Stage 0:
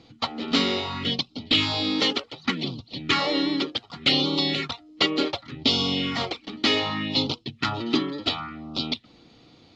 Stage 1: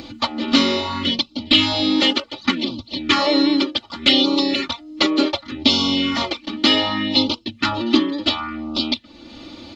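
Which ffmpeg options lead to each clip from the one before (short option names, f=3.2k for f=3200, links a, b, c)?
-filter_complex "[0:a]aecho=1:1:3.4:1,asplit=2[a][b];[b]acompressor=mode=upward:threshold=-21dB:ratio=2.5,volume=-1.5dB[c];[a][c]amix=inputs=2:normalize=0,volume=-2.5dB"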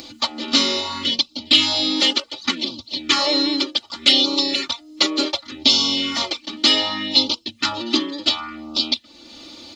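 -af "bass=f=250:g=-7,treble=f=4k:g=13,volume=-3.5dB"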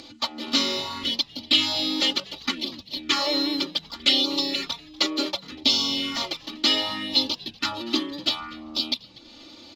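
-filter_complex "[0:a]adynamicsmooth=sensitivity=5.5:basefreq=6.7k,asplit=4[a][b][c][d];[b]adelay=242,afreqshift=-120,volume=-22.5dB[e];[c]adelay=484,afreqshift=-240,volume=-30.7dB[f];[d]adelay=726,afreqshift=-360,volume=-38.9dB[g];[a][e][f][g]amix=inputs=4:normalize=0,volume=-5dB"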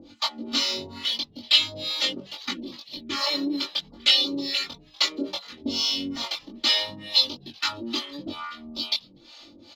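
-filter_complex "[0:a]acrossover=split=580[a][b];[a]aeval=exprs='val(0)*(1-1/2+1/2*cos(2*PI*2.3*n/s))':c=same[c];[b]aeval=exprs='val(0)*(1-1/2-1/2*cos(2*PI*2.3*n/s))':c=same[d];[c][d]amix=inputs=2:normalize=0,asplit=2[e][f];[f]adelay=21,volume=-2.5dB[g];[e][g]amix=inputs=2:normalize=0"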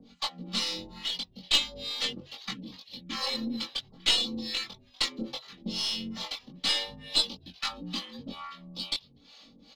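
-af "afreqshift=-54,aeval=exprs='0.668*(cos(1*acos(clip(val(0)/0.668,-1,1)))-cos(1*PI/2))+0.0944*(cos(4*acos(clip(val(0)/0.668,-1,1)))-cos(4*PI/2))':c=same,volume=-6dB"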